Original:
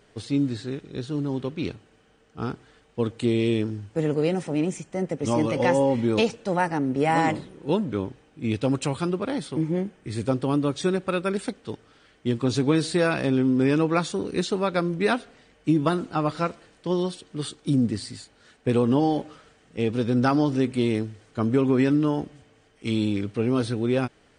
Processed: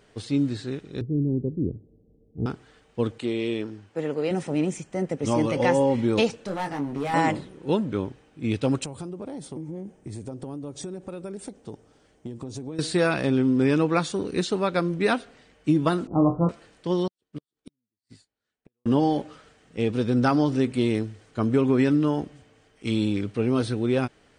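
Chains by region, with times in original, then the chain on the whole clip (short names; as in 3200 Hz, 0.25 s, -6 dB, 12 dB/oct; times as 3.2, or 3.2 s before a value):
1.01–2.46 inverse Chebyshev low-pass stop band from 1600 Hz, stop band 60 dB + low shelf 200 Hz +7.5 dB
3.18–4.31 HPF 420 Hz 6 dB/oct + high shelf 5900 Hz -10 dB
6.46–7.14 compressor 2:1, threshold -27 dBFS + hard clip -25.5 dBFS + doubler 21 ms -5.5 dB
8.84–12.79 band shelf 2300 Hz -9.5 dB 2.3 oct + compressor 12:1, threshold -31 dBFS
16.07–16.49 elliptic low-pass 1100 Hz, stop band 50 dB + tilt shelf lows +8 dB, about 730 Hz + flutter echo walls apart 3.9 m, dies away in 0.25 s
17.07–18.86 flipped gate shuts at -23 dBFS, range -34 dB + upward expander 2.5:1, over -51 dBFS
whole clip: dry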